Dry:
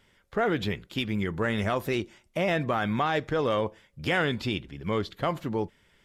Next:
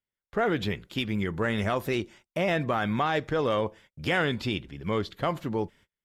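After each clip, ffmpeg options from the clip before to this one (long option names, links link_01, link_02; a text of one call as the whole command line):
ffmpeg -i in.wav -af "agate=range=-32dB:threshold=-52dB:ratio=16:detection=peak" out.wav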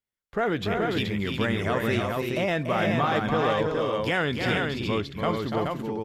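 ffmpeg -i in.wav -af "aecho=1:1:289|339|426:0.473|0.531|0.668" out.wav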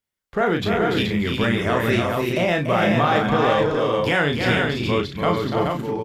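ffmpeg -i in.wav -filter_complex "[0:a]asplit=2[link_01][link_02];[link_02]adelay=34,volume=-5dB[link_03];[link_01][link_03]amix=inputs=2:normalize=0,volume=4.5dB" out.wav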